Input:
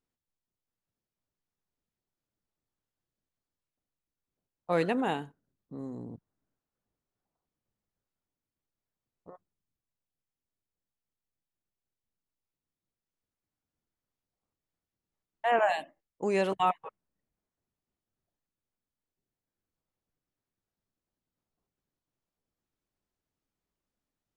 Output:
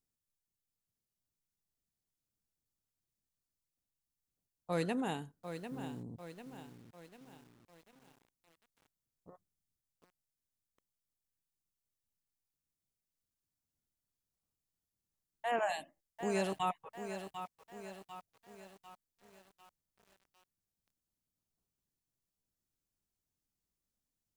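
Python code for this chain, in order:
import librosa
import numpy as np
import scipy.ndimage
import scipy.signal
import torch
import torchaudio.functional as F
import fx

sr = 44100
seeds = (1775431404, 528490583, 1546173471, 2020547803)

y = fx.bass_treble(x, sr, bass_db=7, treble_db=12)
y = fx.echo_crushed(y, sr, ms=746, feedback_pct=55, bits=8, wet_db=-9)
y = y * librosa.db_to_amplitude(-8.5)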